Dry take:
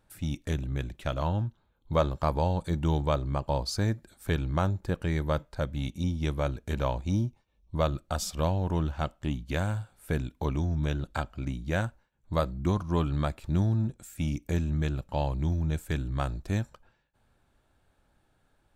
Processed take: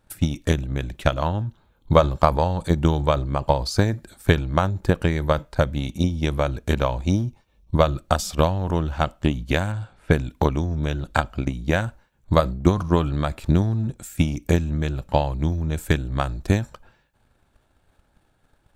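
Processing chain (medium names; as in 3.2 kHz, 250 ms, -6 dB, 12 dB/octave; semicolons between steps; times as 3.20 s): 9.72–10.21 s: level-controlled noise filter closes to 2.4 kHz, open at -24 dBFS; transient shaper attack +12 dB, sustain +8 dB; trim +2 dB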